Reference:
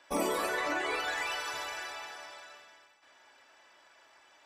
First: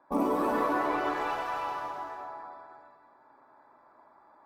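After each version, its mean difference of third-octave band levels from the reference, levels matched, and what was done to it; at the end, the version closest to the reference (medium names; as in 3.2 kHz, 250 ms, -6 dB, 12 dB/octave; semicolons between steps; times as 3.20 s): 8.5 dB: local Wiener filter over 15 samples; graphic EQ 125/250/1000/2000/4000/8000 Hz +7/+8/+9/-6/-4/-10 dB; gated-style reverb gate 440 ms flat, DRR -2 dB; trim -3 dB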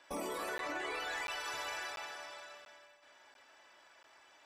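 3.5 dB: peak limiter -29.5 dBFS, peak gain reduction 10.5 dB; spring tank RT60 2.7 s, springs 46 ms, DRR 15.5 dB; crackling interface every 0.69 s, samples 512, zero, from 0.58 s; trim -1.5 dB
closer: second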